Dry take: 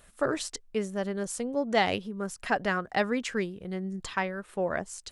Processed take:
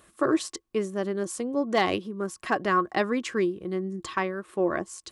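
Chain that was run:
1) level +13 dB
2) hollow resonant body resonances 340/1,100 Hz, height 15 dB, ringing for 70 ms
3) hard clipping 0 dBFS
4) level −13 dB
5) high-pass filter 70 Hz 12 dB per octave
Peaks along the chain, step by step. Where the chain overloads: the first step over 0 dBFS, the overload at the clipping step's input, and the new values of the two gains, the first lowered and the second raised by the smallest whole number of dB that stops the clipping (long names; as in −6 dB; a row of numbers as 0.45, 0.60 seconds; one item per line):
+2.5, +4.5, 0.0, −13.0, −11.5 dBFS
step 1, 4.5 dB
step 1 +8 dB, step 4 −8 dB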